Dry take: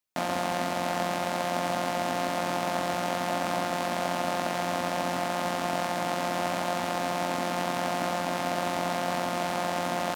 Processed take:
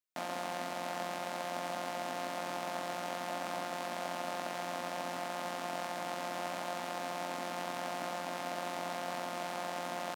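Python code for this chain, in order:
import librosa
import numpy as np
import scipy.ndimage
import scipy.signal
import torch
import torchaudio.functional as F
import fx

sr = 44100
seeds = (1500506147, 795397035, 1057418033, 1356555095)

y = fx.highpass(x, sr, hz=280.0, slope=6)
y = y * 10.0 ** (-8.5 / 20.0)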